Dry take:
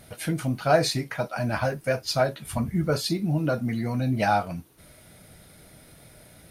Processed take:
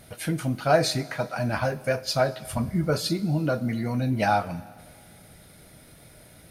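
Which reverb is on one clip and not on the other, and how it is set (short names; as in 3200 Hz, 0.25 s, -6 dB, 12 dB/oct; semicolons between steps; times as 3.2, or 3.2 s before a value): Schroeder reverb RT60 2 s, combs from 29 ms, DRR 17 dB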